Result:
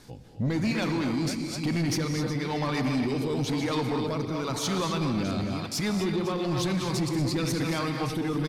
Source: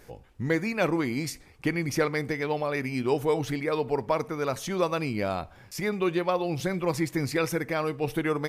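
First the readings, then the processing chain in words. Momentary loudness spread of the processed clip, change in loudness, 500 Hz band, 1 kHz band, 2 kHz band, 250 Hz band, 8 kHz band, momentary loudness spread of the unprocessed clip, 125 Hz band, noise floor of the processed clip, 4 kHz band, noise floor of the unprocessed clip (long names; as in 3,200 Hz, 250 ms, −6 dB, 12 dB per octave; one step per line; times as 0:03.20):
3 LU, 0.0 dB, −4.5 dB, −2.0 dB, −3.5 dB, +2.5 dB, +4.0 dB, 5 LU, +4.0 dB, −38 dBFS, +6.0 dB, −53 dBFS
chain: delay that plays each chunk backwards 354 ms, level −9 dB
octave-band graphic EQ 125/250/500/1,000/2,000/4,000/8,000 Hz +7/+9/−5/+7/−3/+12/+5 dB
far-end echo of a speakerphone 250 ms, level −9 dB
brickwall limiter −14 dBFS, peak gain reduction 6.5 dB
rotating-speaker cabinet horn 1 Hz
reverb whose tail is shaped and stops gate 280 ms rising, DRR 6.5 dB
soft clipping −21.5 dBFS, distortion −14 dB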